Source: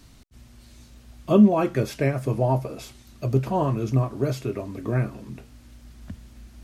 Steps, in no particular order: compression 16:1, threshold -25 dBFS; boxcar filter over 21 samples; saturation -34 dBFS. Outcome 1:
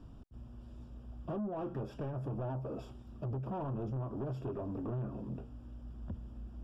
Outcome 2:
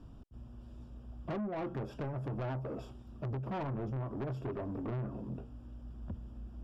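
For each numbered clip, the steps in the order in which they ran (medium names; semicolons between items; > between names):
compression > saturation > boxcar filter; boxcar filter > compression > saturation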